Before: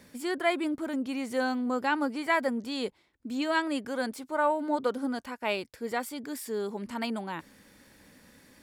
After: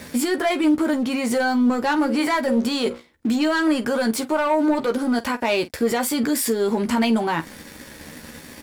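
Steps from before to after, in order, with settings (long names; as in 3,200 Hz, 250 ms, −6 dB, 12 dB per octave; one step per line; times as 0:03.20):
0:01.95–0:03.40: mains-hum notches 60/120/180/240/300/360/420/480/540 Hz
in parallel at +2 dB: downward compressor, threshold −38 dBFS, peak gain reduction 16.5 dB
on the sum: leveller curve on the samples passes 2
speech leveller within 4 dB 0.5 s
brickwall limiter −19.5 dBFS, peak gain reduction 8 dB
on a send: ambience of single reflections 13 ms −6 dB, 49 ms −16.5 dB
on the sum: level +4 dB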